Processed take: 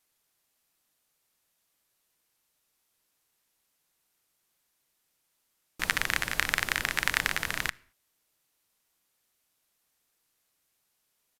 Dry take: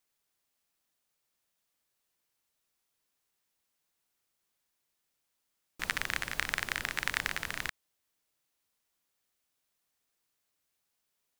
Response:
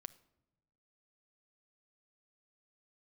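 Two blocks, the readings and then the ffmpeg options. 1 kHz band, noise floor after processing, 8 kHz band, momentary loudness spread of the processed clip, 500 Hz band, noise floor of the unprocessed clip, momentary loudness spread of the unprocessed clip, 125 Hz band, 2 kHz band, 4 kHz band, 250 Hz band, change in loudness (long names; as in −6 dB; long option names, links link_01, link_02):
+5.0 dB, −77 dBFS, +6.0 dB, 5 LU, +5.0 dB, −82 dBFS, 5 LU, +5.0 dB, +5.5 dB, +5.5 dB, +5.5 dB, +5.5 dB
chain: -filter_complex "[0:a]asplit=2[link_01][link_02];[1:a]atrim=start_sample=2205,afade=type=out:start_time=0.28:duration=0.01,atrim=end_sample=12789,highshelf=frequency=11000:gain=9.5[link_03];[link_02][link_03]afir=irnorm=-1:irlink=0,volume=4dB[link_04];[link_01][link_04]amix=inputs=2:normalize=0,aresample=32000,aresample=44100"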